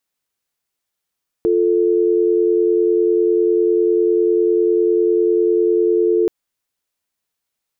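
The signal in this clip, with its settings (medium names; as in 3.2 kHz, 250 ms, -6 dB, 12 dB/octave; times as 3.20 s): call progress tone dial tone, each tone -15 dBFS 4.83 s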